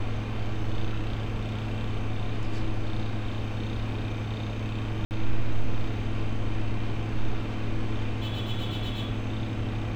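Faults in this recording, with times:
5.05–5.11 s: dropout 59 ms

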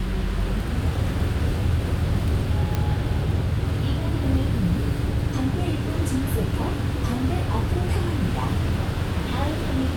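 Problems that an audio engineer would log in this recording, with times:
2.75 s: pop -11 dBFS

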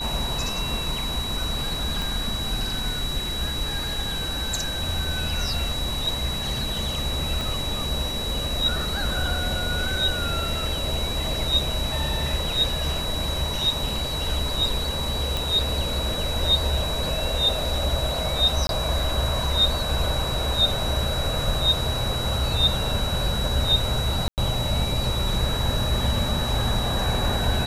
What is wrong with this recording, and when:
whine 3.9 kHz -29 dBFS
2.02 s: pop
7.41 s: pop
15.37 s: pop
18.67–18.69 s: dropout 22 ms
24.28–24.38 s: dropout 98 ms

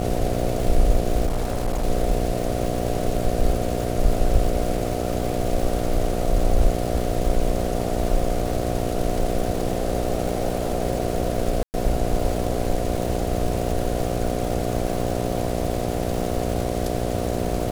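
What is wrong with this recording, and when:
buzz 60 Hz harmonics 12 -26 dBFS
crackle 600 per s -29 dBFS
1.26–1.85 s: clipped -18.5 dBFS
11.63–11.74 s: dropout 109 ms

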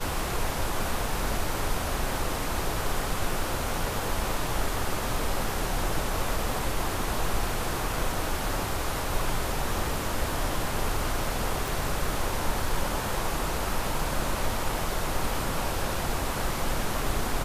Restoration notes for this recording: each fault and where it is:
11.68 s: pop

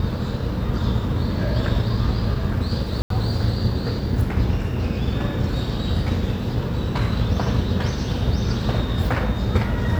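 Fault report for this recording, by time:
3.02–3.10 s: dropout 83 ms

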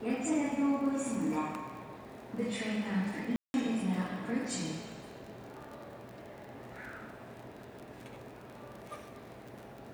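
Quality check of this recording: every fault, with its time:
crackle 33 per s -42 dBFS
3.36–3.54 s: dropout 181 ms

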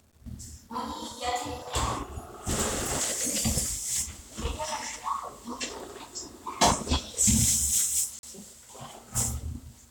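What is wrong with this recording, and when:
8.19–8.23 s: dropout 41 ms

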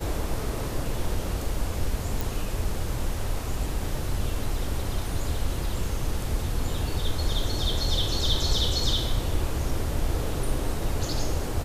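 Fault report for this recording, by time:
2.21 s: pop

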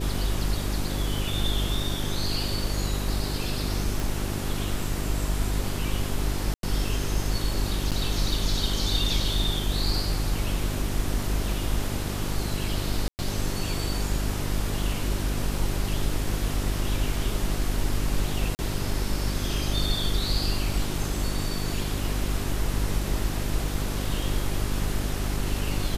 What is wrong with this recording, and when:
hum 50 Hz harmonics 8 -30 dBFS
4.00 s: pop
6.54–6.63 s: dropout 92 ms
7.91–7.92 s: dropout 7.4 ms
13.08–13.19 s: dropout 109 ms
18.55–18.59 s: dropout 39 ms

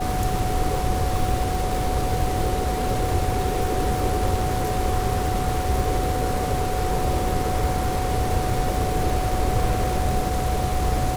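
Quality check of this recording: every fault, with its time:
crackle 560 per s -29 dBFS
whine 740 Hz -27 dBFS

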